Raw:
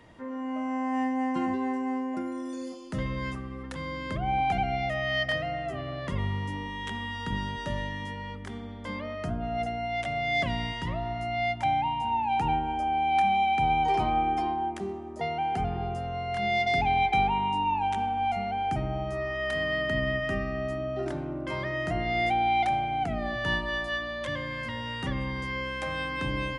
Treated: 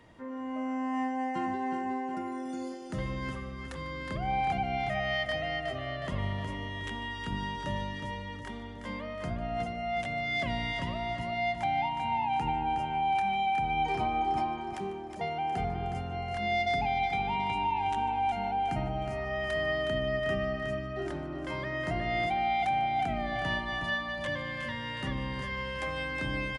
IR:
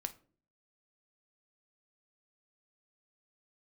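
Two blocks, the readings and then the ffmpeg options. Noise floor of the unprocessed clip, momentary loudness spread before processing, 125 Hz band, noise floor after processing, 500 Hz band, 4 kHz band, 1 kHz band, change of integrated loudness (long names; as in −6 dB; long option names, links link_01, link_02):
−38 dBFS, 10 LU, −3.0 dB, −40 dBFS, −2.0 dB, −2.5 dB, −3.0 dB, −3.0 dB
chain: -filter_complex "[0:a]asplit=2[link_01][link_02];[link_02]aecho=0:1:365|730|1095|1460|1825:0.447|0.201|0.0905|0.0407|0.0183[link_03];[link_01][link_03]amix=inputs=2:normalize=0,alimiter=limit=-18.5dB:level=0:latency=1:release=161,asplit=2[link_04][link_05];[link_05]aecho=0:1:148:0.119[link_06];[link_04][link_06]amix=inputs=2:normalize=0,volume=-3dB"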